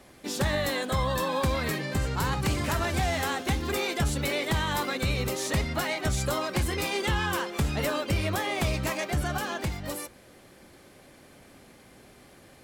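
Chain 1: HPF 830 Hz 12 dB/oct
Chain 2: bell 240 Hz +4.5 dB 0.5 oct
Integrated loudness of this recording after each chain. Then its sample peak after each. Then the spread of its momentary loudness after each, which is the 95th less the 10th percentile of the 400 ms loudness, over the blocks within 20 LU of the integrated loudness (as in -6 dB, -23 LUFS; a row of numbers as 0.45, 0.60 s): -32.0, -28.0 LUFS; -17.5, -15.0 dBFS; 5, 3 LU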